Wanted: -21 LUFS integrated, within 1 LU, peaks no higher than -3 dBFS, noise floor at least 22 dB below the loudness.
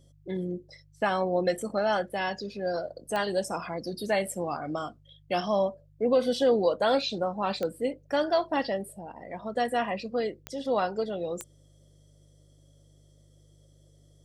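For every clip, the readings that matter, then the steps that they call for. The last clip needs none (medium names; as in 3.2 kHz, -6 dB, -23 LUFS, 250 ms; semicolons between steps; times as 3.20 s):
clicks found 4; hum 50 Hz; highest harmonic 150 Hz; hum level -56 dBFS; loudness -29.5 LUFS; peak level -13.0 dBFS; loudness target -21.0 LUFS
-> de-click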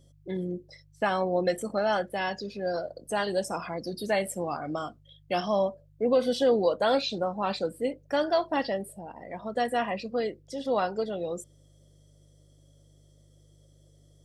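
clicks found 0; hum 50 Hz; highest harmonic 150 Hz; hum level -56 dBFS
-> de-hum 50 Hz, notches 3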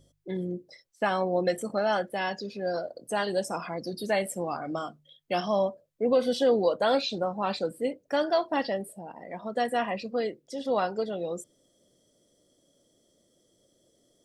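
hum not found; loudness -29.5 LUFS; peak level -13.0 dBFS; loudness target -21.0 LUFS
-> trim +8.5 dB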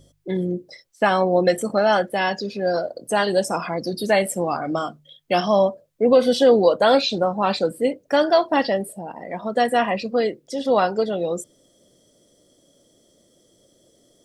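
loudness -21.0 LUFS; peak level -4.5 dBFS; noise floor -60 dBFS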